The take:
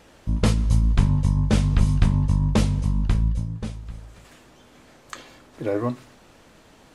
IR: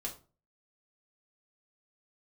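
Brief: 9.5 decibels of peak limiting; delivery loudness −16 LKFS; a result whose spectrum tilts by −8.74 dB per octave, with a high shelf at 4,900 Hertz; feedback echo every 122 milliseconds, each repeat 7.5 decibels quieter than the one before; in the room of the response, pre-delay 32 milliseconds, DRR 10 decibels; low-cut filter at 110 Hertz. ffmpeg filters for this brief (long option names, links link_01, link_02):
-filter_complex "[0:a]highpass=110,highshelf=frequency=4900:gain=-8,alimiter=limit=-16.5dB:level=0:latency=1,aecho=1:1:122|244|366|488|610:0.422|0.177|0.0744|0.0312|0.0131,asplit=2[link_01][link_02];[1:a]atrim=start_sample=2205,adelay=32[link_03];[link_02][link_03]afir=irnorm=-1:irlink=0,volume=-10dB[link_04];[link_01][link_04]amix=inputs=2:normalize=0,volume=9.5dB"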